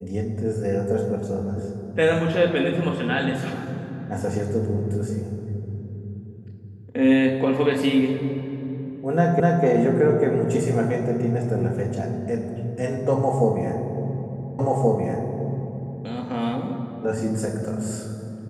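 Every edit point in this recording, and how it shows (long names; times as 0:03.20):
0:09.40: the same again, the last 0.25 s
0:14.59: the same again, the last 1.43 s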